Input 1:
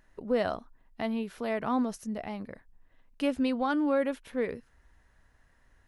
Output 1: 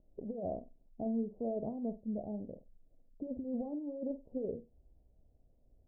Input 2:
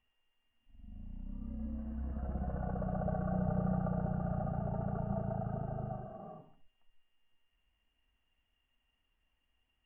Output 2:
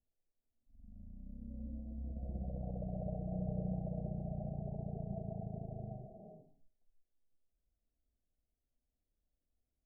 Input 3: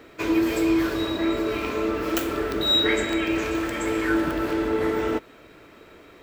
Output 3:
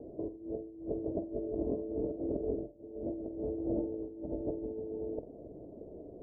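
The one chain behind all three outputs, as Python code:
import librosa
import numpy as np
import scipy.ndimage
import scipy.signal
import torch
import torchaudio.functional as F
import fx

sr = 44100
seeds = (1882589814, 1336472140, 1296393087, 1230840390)

y = fx.over_compress(x, sr, threshold_db=-30.0, ratio=-0.5)
y = scipy.signal.sosfilt(scipy.signal.butter(8, 680.0, 'lowpass', fs=sr, output='sos'), y)
y = fx.room_flutter(y, sr, wall_m=8.2, rt60_s=0.24)
y = y * librosa.db_to_amplitude(-5.0)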